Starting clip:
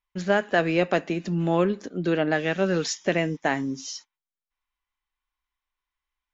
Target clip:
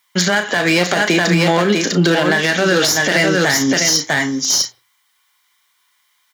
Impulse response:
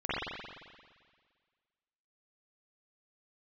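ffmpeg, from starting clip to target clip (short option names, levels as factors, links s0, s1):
-filter_complex "[0:a]tiltshelf=f=1100:g=-8.5,aeval=exprs='clip(val(0),-1,0.0473)':c=same,highpass=f=95:w=0.5412,highpass=f=95:w=1.3066,bandreject=f=2600:w=6.2,aecho=1:1:649:0.501,acompressor=threshold=0.0398:ratio=6,bandreject=f=60:t=h:w=6,bandreject=f=120:t=h:w=6,asplit=2[s0][s1];[s1]adelay=34,volume=0.316[s2];[s0][s2]amix=inputs=2:normalize=0,asplit=2[s3][s4];[1:a]atrim=start_sample=2205,afade=t=out:st=0.24:d=0.01,atrim=end_sample=11025[s5];[s4][s5]afir=irnorm=-1:irlink=0,volume=0.0224[s6];[s3][s6]amix=inputs=2:normalize=0,alimiter=level_in=17.8:limit=0.891:release=50:level=0:latency=1,volume=0.631"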